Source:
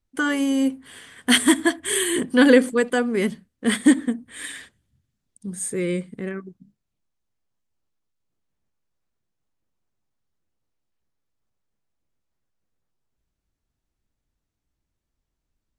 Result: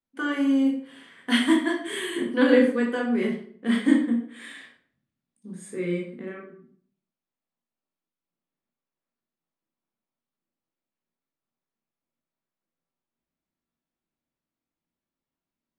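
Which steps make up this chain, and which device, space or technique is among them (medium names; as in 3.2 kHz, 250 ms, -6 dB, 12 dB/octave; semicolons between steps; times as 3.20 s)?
bathroom (reverberation RT60 0.55 s, pre-delay 14 ms, DRR -1.5 dB); three-band isolator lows -18 dB, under 160 Hz, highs -13 dB, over 4.2 kHz; trim -8 dB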